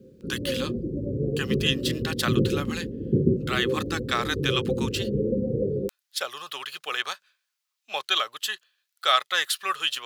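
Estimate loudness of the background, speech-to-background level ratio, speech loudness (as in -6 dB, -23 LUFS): -28.0 LUFS, -0.5 dB, -28.5 LUFS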